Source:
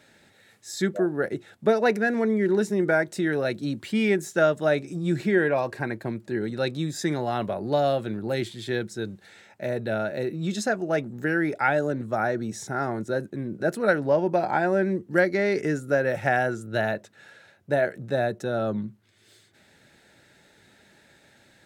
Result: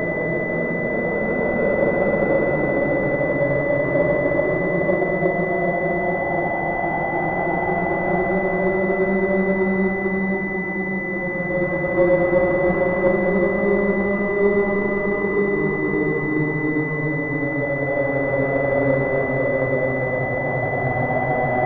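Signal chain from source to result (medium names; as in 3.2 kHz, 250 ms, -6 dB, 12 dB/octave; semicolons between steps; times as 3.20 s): square wave that keeps the level; Paulstretch 8×, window 0.50 s, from 13.63 s; class-D stage that switches slowly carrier 2 kHz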